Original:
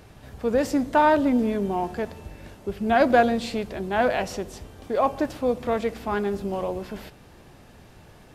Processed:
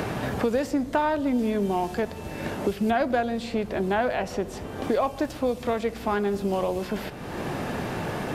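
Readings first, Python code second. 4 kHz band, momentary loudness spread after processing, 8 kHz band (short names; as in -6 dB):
-0.5 dB, 8 LU, 0.0 dB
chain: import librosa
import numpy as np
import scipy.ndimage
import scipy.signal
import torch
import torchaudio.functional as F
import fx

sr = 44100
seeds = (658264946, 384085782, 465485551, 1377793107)

y = fx.band_squash(x, sr, depth_pct=100)
y = F.gain(torch.from_numpy(y), -2.0).numpy()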